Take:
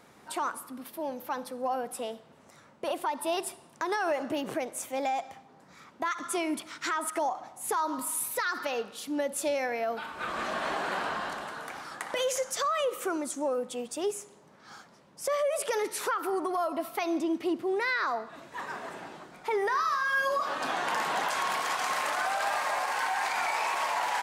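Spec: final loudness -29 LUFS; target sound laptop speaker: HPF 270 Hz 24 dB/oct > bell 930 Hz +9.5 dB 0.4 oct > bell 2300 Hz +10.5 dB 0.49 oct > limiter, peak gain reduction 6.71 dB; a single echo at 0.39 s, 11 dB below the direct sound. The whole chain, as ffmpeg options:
-af "highpass=f=270:w=0.5412,highpass=f=270:w=1.3066,equalizer=f=930:t=o:w=0.4:g=9.5,equalizer=f=2.3k:t=o:w=0.49:g=10.5,aecho=1:1:390:0.282,volume=-0.5dB,alimiter=limit=-18.5dB:level=0:latency=1"

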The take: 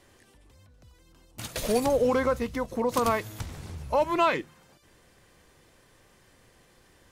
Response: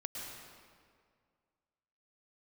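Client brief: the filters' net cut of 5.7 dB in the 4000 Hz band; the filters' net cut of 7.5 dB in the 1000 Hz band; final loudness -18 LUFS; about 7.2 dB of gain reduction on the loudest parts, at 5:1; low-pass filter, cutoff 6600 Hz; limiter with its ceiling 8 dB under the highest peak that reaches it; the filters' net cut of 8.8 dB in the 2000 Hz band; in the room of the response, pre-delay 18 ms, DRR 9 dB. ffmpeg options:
-filter_complex "[0:a]lowpass=6.6k,equalizer=f=1k:t=o:g=-7,equalizer=f=2k:t=o:g=-8.5,equalizer=f=4k:t=o:g=-3.5,acompressor=threshold=-30dB:ratio=5,alimiter=level_in=5.5dB:limit=-24dB:level=0:latency=1,volume=-5.5dB,asplit=2[a][b];[1:a]atrim=start_sample=2205,adelay=18[c];[b][c]afir=irnorm=-1:irlink=0,volume=-9dB[d];[a][d]amix=inputs=2:normalize=0,volume=21dB"

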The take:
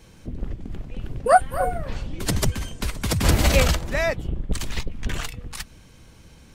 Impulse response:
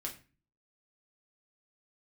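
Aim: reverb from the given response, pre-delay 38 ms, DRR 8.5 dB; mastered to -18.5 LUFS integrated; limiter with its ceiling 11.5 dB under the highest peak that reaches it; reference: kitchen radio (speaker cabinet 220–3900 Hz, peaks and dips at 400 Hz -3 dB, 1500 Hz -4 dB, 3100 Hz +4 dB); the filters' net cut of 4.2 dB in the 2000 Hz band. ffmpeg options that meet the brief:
-filter_complex "[0:a]equalizer=f=2k:t=o:g=-4,alimiter=limit=-15.5dB:level=0:latency=1,asplit=2[a][b];[1:a]atrim=start_sample=2205,adelay=38[c];[b][c]afir=irnorm=-1:irlink=0,volume=-8dB[d];[a][d]amix=inputs=2:normalize=0,highpass=220,equalizer=f=400:t=q:w=4:g=-3,equalizer=f=1.5k:t=q:w=4:g=-4,equalizer=f=3.1k:t=q:w=4:g=4,lowpass=f=3.9k:w=0.5412,lowpass=f=3.9k:w=1.3066,volume=13dB"

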